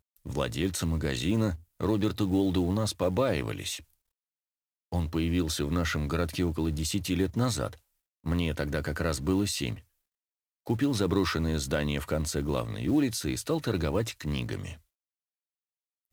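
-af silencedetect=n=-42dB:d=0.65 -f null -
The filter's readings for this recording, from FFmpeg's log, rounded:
silence_start: 3.80
silence_end: 4.92 | silence_duration: 1.12
silence_start: 9.79
silence_end: 10.67 | silence_duration: 0.88
silence_start: 14.75
silence_end: 16.13 | silence_duration: 1.38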